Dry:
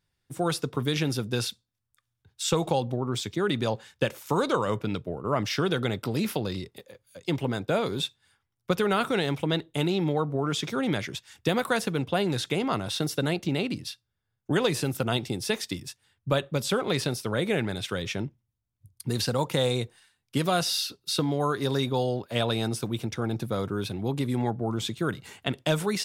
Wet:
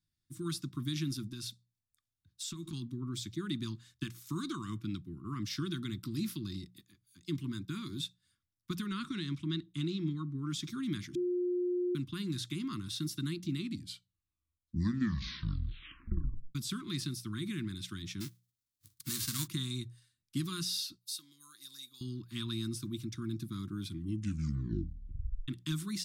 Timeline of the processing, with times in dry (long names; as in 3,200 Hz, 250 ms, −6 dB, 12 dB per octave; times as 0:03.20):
0:01.27–0:02.73: downward compressor, threshold −28 dBFS
0:08.86–0:10.43: low-pass filter 6,700 Hz
0:11.15–0:11.95: beep over 357 Hz −17.5 dBFS
0:13.52: tape stop 3.03 s
0:18.20–0:19.46: spectral envelope flattened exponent 0.3
0:20.98–0:22.01: first difference
0:23.80: tape stop 1.68 s
whole clip: Chebyshev band-stop filter 340–1,100 Hz, order 4; flat-topped bell 1,800 Hz −8.5 dB; mains-hum notches 60/120/180 Hz; level −6.5 dB